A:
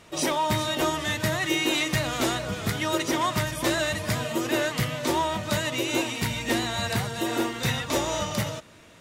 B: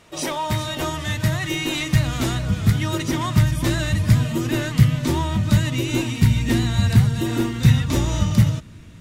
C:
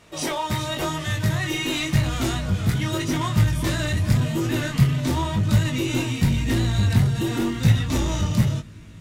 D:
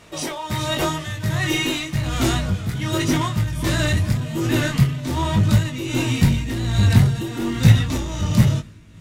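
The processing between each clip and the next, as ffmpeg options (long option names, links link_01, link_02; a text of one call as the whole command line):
ffmpeg -i in.wav -af "asubboost=boost=10:cutoff=180" out.wav
ffmpeg -i in.wav -filter_complex "[0:a]flanger=delay=18.5:depth=5:speed=0.9,asplit=2[link_01][link_02];[link_02]aeval=exprs='0.075*(abs(mod(val(0)/0.075+3,4)-2)-1)':channel_layout=same,volume=-9dB[link_03];[link_01][link_03]amix=inputs=2:normalize=0" out.wav
ffmpeg -i in.wav -af "tremolo=f=1.3:d=0.65,volume=5dB" out.wav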